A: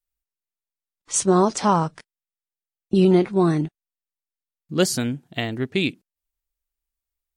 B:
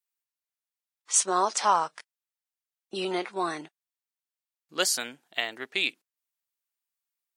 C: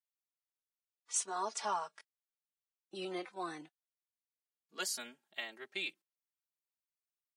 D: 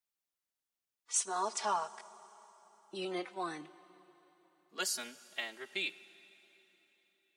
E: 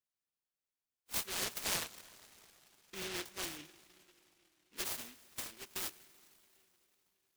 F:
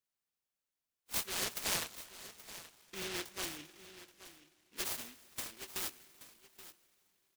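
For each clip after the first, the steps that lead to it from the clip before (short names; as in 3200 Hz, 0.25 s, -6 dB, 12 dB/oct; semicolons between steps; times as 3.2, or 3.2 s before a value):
HPF 800 Hz 12 dB/oct
endless flanger 3.4 ms -0.32 Hz; gain -9 dB
plate-style reverb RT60 4 s, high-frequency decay 0.9×, DRR 16.5 dB; gain +2.5 dB
noise-modulated delay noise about 2500 Hz, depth 0.44 ms; gain -3.5 dB
echo 0.827 s -15 dB; gain +1 dB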